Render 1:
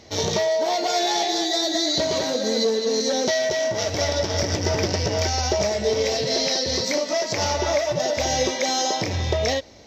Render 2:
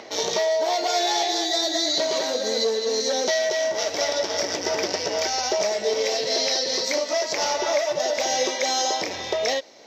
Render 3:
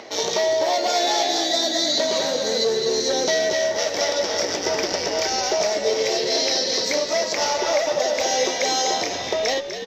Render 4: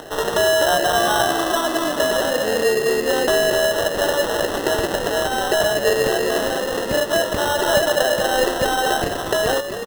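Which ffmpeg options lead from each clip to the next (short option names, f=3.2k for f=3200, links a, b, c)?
-filter_complex "[0:a]highpass=380,acrossover=split=3000[a][b];[a]acompressor=mode=upward:threshold=-34dB:ratio=2.5[c];[c][b]amix=inputs=2:normalize=0"
-filter_complex "[0:a]asplit=5[a][b][c][d][e];[b]adelay=248,afreqshift=-75,volume=-9dB[f];[c]adelay=496,afreqshift=-150,volume=-17.9dB[g];[d]adelay=744,afreqshift=-225,volume=-26.7dB[h];[e]adelay=992,afreqshift=-300,volume=-35.6dB[i];[a][f][g][h][i]amix=inputs=5:normalize=0,volume=1.5dB"
-af "aresample=8000,aresample=44100,acrusher=samples=19:mix=1:aa=0.000001,volume=4dB"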